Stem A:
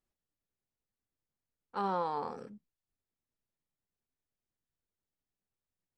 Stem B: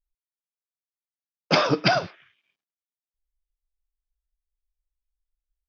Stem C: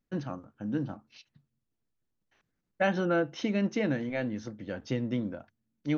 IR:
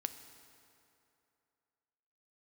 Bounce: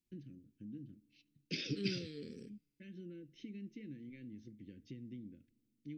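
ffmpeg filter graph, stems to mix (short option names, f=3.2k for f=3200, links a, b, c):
-filter_complex "[0:a]volume=0dB[a];[1:a]alimiter=limit=-15dB:level=0:latency=1:release=49,volume=-11dB,asplit=2[b][c];[c]volume=-22dB[d];[2:a]lowpass=f=1.9k:p=1,acompressor=threshold=-39dB:ratio=2.5,volume=-10.5dB,asplit=2[e][f];[f]volume=-14.5dB[g];[3:a]atrim=start_sample=2205[h];[d][g]amix=inputs=2:normalize=0[i];[i][h]afir=irnorm=-1:irlink=0[j];[a][b][e][j]amix=inputs=4:normalize=0,asuperstop=centerf=900:order=8:qfactor=0.52"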